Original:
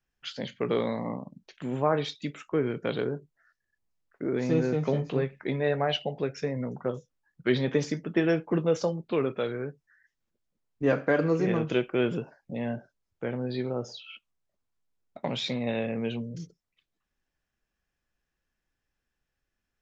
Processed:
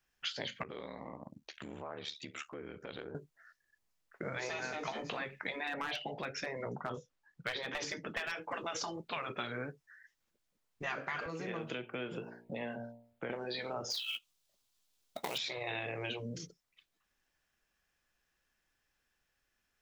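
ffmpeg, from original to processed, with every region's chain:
ffmpeg -i in.wav -filter_complex "[0:a]asettb=1/sr,asplit=3[link_01][link_02][link_03];[link_01]atrim=end=0.634[link_04];[link_02]atrim=start=0.63:end=3.15,asetpts=PTS-STARTPTS,afade=type=in:duration=0.004:curve=qsin,afade=type=out:start_time=2.516:duration=0.004:curve=qsin,acompressor=threshold=-40dB:ratio=6:attack=3.2:release=140:knee=1:detection=peak,aeval=exprs='val(0)*sin(2*PI*37*n/s)':channel_layout=same[link_05];[link_03]atrim=start=3.146[link_06];[link_04][link_05]acrossfade=duration=0.004:curve1=hsin:curve2=qsin[link_07];[link_07][link_06]acrossfade=duration=0.004:curve1=qsin:curve2=hsin,asettb=1/sr,asplit=3[link_08][link_09][link_10];[link_08]atrim=end=5.674[link_11];[link_09]atrim=start=5.67:end=8.32,asetpts=PTS-STARTPTS,afade=type=in:duration=0.004:curve=qsin,afade=type=out:start_time=2.646:duration=0.004:curve=qsin,highshelf=frequency=6600:gain=-9.5,aeval=exprs='clip(val(0),-1,0.0891)':channel_layout=same[link_12];[link_10]atrim=start=8.316[link_13];[link_11][link_12]acrossfade=duration=0.004:curve1=hsin:curve2=qsin[link_14];[link_14][link_13]acrossfade=duration=0.004:curve1=qsin:curve2=hsin,asettb=1/sr,asplit=3[link_15][link_16][link_17];[link_15]atrim=end=11.264[link_18];[link_16]atrim=start=11.26:end=13.3,asetpts=PTS-STARTPTS,afade=type=in:duration=0.004:curve=qsin,afade=type=out:start_time=2.036:duration=0.004:curve=qsin,equalizer=frequency=5900:width_type=o:width=0.8:gain=-10,bandreject=frequency=58.61:width_type=h:width=4,bandreject=frequency=117.22:width_type=h:width=4,bandreject=frequency=175.83:width_type=h:width=4,bandreject=frequency=234.44:width_type=h:width=4,bandreject=frequency=293.05:width_type=h:width=4,bandreject=frequency=351.66:width_type=h:width=4,bandreject=frequency=410.27:width_type=h:width=4,bandreject=frequency=468.88:width_type=h:width=4,bandreject=frequency=527.49:width_type=h:width=4,bandreject=frequency=586.1:width_type=h:width=4,bandreject=frequency=644.71:width_type=h:width=4,bandreject=frequency=703.32:width_type=h:width=4,bandreject=frequency=761.93:width_type=h:width=4,bandreject=frequency=820.54:width_type=h:width=4,bandreject=frequency=879.15:width_type=h:width=4,bandreject=frequency=937.76:width_type=h:width=4,acrossover=split=250|3800[link_19][link_20][link_21];[link_19]acompressor=threshold=-44dB:ratio=4[link_22];[link_20]acompressor=threshold=-39dB:ratio=4[link_23];[link_21]acompressor=threshold=-59dB:ratio=4[link_24];[link_22][link_23][link_24]amix=inputs=3:normalize=0[link_25];[link_17]atrim=start=13.296[link_26];[link_18][link_25]acrossfade=duration=0.004:curve1=hsin:curve2=qsin[link_27];[link_27][link_26]acrossfade=duration=0.004:curve1=qsin:curve2=hsin,asettb=1/sr,asplit=3[link_28][link_29][link_30];[link_28]atrim=end=13.904[link_31];[link_29]atrim=start=13.9:end=15.38,asetpts=PTS-STARTPTS,afade=type=in:duration=0.004:curve=qsin,afade=type=out:start_time=1.476:duration=0.004:curve=qsin,highshelf=frequency=2600:width_type=q:width=1.5:gain=7.5,acrusher=bits=4:mode=log:mix=0:aa=0.000001[link_32];[link_30]atrim=start=15.376[link_33];[link_31][link_32]acrossfade=duration=0.004:curve1=hsin:curve2=qsin[link_34];[link_34][link_33]acrossfade=duration=0.004:curve1=qsin:curve2=hsin,afftfilt=real='re*lt(hypot(re,im),0.141)':imag='im*lt(hypot(re,im),0.141)':win_size=1024:overlap=0.75,lowshelf=frequency=490:gain=-9.5,acompressor=threshold=-41dB:ratio=6,volume=6dB" out.wav

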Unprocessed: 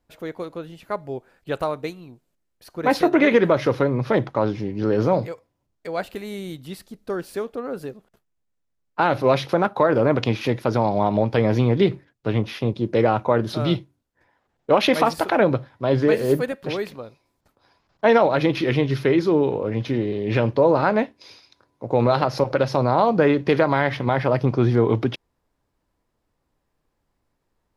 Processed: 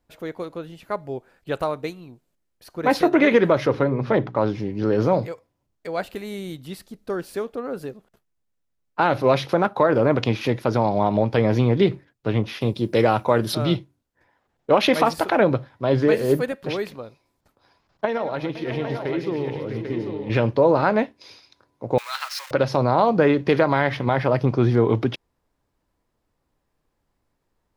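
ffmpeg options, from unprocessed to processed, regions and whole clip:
ffmpeg -i in.wav -filter_complex "[0:a]asettb=1/sr,asplit=3[link_01][link_02][link_03];[link_01]atrim=end=3.664[link_04];[link_02]atrim=start=3.66:end=4.39,asetpts=PTS-STARTPTS,afade=type=in:duration=0.004:curve=qsin,afade=type=out:start_time=0.726:duration=0.004:curve=qsin,aemphasis=mode=reproduction:type=50fm,bandreject=frequency=60:width_type=h:width=6,bandreject=frequency=120:width_type=h:width=6,bandreject=frequency=180:width_type=h:width=6,bandreject=frequency=240:width_type=h:width=6,bandreject=frequency=300:width_type=h:width=6,bandreject=frequency=360:width_type=h:width=6,bandreject=frequency=420:width_type=h:width=6[link_05];[link_03]atrim=start=4.386[link_06];[link_04][link_05]acrossfade=duration=0.004:curve1=hsin:curve2=qsin[link_07];[link_07][link_06]acrossfade=duration=0.004:curve1=qsin:curve2=hsin,asettb=1/sr,asplit=3[link_08][link_09][link_10];[link_08]atrim=end=12.614[link_11];[link_09]atrim=start=12.61:end=13.55,asetpts=PTS-STARTPTS,afade=type=in:duration=0.004:curve=qsin,afade=type=out:start_time=0.936:duration=0.004:curve=qsin,aemphasis=mode=production:type=75kf,bandreject=frequency=6500:width=9[link_12];[link_10]atrim=start=13.546[link_13];[link_11][link_12]acrossfade=duration=0.004:curve1=hsin:curve2=qsin[link_14];[link_14][link_13]acrossfade=duration=0.004:curve1=qsin:curve2=hsin,asettb=1/sr,asplit=3[link_15][link_16][link_17];[link_15]atrim=end=18.054[link_18];[link_16]atrim=start=18.05:end=20.3,asetpts=PTS-STARTPTS,afade=type=in:duration=0.004:curve=qsin,afade=type=out:start_time=2.246:duration=0.004:curve=qsin,agate=range=-33dB:threshold=-20dB:ratio=3:release=100:detection=peak,acompressor=threshold=-26dB:ratio=2.5:attack=3.2:release=140:knee=1:detection=peak,aecho=1:1:113|499|652|793:0.266|0.168|0.299|0.447,atrim=end_sample=99225[link_19];[link_17]atrim=start=20.296[link_20];[link_18][link_19]acrossfade=duration=0.004:curve1=hsin:curve2=qsin[link_21];[link_21][link_20]acrossfade=duration=0.004:curve1=qsin:curve2=hsin,asettb=1/sr,asplit=3[link_22][link_23][link_24];[link_22]atrim=end=21.984[link_25];[link_23]atrim=start=21.98:end=22.51,asetpts=PTS-STARTPTS,afade=type=in:duration=0.004:curve=qsin,afade=type=out:start_time=0.526:duration=0.004:curve=qsin,aeval=exprs='val(0)+0.5*0.0376*sgn(val(0))':channel_layout=same,highpass=frequency=1400:width=0.5412,highpass=frequency=1400:width=1.3066[link_26];[link_24]atrim=start=22.506[link_27];[link_25][link_26]acrossfade=duration=0.004:curve1=hsin:curve2=qsin[link_28];[link_28][link_27]acrossfade=duration=0.004:curve1=qsin:curve2=hsin" out.wav

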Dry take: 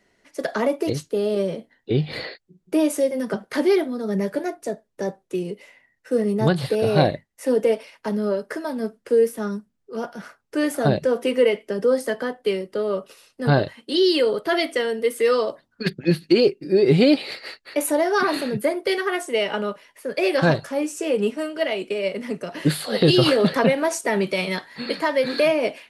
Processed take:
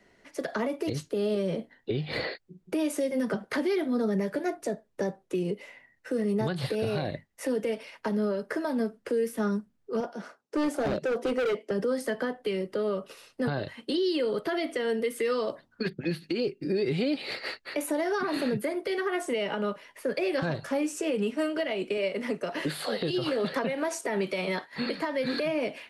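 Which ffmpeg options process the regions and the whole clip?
ffmpeg -i in.wav -filter_complex "[0:a]asettb=1/sr,asplit=3[link_01][link_02][link_03];[link_01]atrim=end=10.004[link_04];[link_02]atrim=start=10:end=11.71,asetpts=PTS-STARTPTS,afade=type=in:duration=0.004:curve=qsin,afade=type=out:start_time=1.706:duration=0.004:curve=qsin,highpass=260,lowpass=7800,equalizer=frequency=1900:width_type=o:width=2.2:gain=-8.5,asoftclip=type=hard:threshold=-24dB[link_05];[link_03]atrim=start=11.706[link_06];[link_04][link_05]acrossfade=duration=0.004:curve1=hsin:curve2=qsin[link_07];[link_07][link_06]acrossfade=duration=0.004:curve1=qsin:curve2=hsin,asettb=1/sr,asplit=3[link_08][link_09][link_10];[link_08]atrim=end=21.974[link_11];[link_09]atrim=start=21.97:end=24.73,asetpts=PTS-STARTPTS,afade=type=in:duration=0.004:curve=qsin,afade=type=out:start_time=2.756:duration=0.004:curve=qsin,agate=range=-33dB:threshold=-40dB:ratio=3:release=100:detection=peak,bass=frequency=250:gain=-8,treble=frequency=4000:gain=0[link_12];[link_10]atrim=start=24.726[link_13];[link_11][link_12]acrossfade=duration=0.004:curve1=hsin:curve2=qsin[link_14];[link_14][link_13]acrossfade=duration=0.004:curve1=qsin:curve2=hsin,highshelf=frequency=4200:gain=-6.5,acrossover=split=280|1400[link_15][link_16][link_17];[link_15]acompressor=threshold=-28dB:ratio=4[link_18];[link_16]acompressor=threshold=-28dB:ratio=4[link_19];[link_17]acompressor=threshold=-34dB:ratio=4[link_20];[link_18][link_19][link_20]amix=inputs=3:normalize=0,alimiter=limit=-23dB:level=0:latency=1:release=236,volume=3dB" out.wav

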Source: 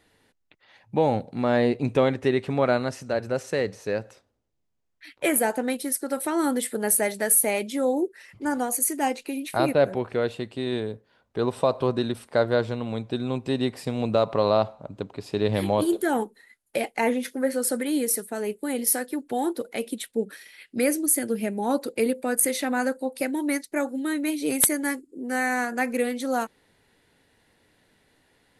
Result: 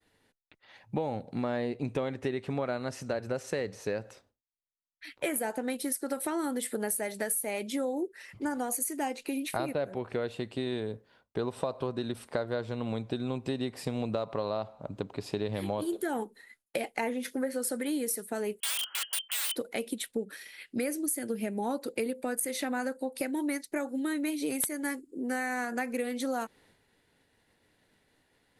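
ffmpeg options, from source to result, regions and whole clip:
ffmpeg -i in.wav -filter_complex "[0:a]asettb=1/sr,asplit=3[link_01][link_02][link_03];[link_01]atrim=end=18.604[link_04];[link_02]atrim=start=18.6:end=19.56,asetpts=PTS-STARTPTS,afade=type=in:duration=0.004:curve=qsin,afade=type=out:start_time=0.956:duration=0.004:curve=qsin,lowpass=frequency=2900:width_type=q:width=0.5098,lowpass=frequency=2900:width_type=q:width=0.6013,lowpass=frequency=2900:width_type=q:width=0.9,lowpass=frequency=2900:width_type=q:width=2.563,afreqshift=-3400,aeval=exprs='(mod(17.8*val(0)+1,2)-1)/17.8':channel_layout=same,highpass=730[link_05];[link_03]atrim=start=19.556[link_06];[link_04][link_05]acrossfade=duration=0.004:curve1=hsin:curve2=qsin[link_07];[link_07][link_06]acrossfade=duration=0.004:curve1=qsin:curve2=hsin,agate=range=-33dB:threshold=-58dB:ratio=3:detection=peak,acompressor=threshold=-29dB:ratio=6" out.wav

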